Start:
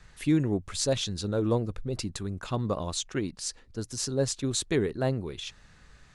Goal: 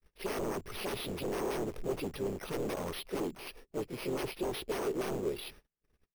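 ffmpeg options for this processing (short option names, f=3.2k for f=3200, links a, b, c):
-filter_complex "[0:a]agate=range=-42dB:threshold=-48dB:ratio=16:detection=peak,aresample=11025,aresample=44100,asplit=3[a][b][c];[b]asetrate=58866,aresample=44100,atempo=0.749154,volume=-6dB[d];[c]asetrate=66075,aresample=44100,atempo=0.66742,volume=-16dB[e];[a][d][e]amix=inputs=3:normalize=0,aresample=16000,aeval=exprs='0.0355*(abs(mod(val(0)/0.0355+3,4)-2)-1)':c=same,aresample=44100,acrusher=samples=6:mix=1:aa=0.000001,asplit=2[f][g];[g]aeval=exprs='(mod(94.4*val(0)+1,2)-1)/94.4':c=same,volume=-6.5dB[h];[f][h]amix=inputs=2:normalize=0,equalizer=f=100:t=o:w=0.67:g=-7,equalizer=f=400:t=o:w=0.67:g=11,equalizer=f=1.6k:t=o:w=0.67:g=-4,equalizer=f=4k:t=o:w=0.67:g=-4,volume=-4dB"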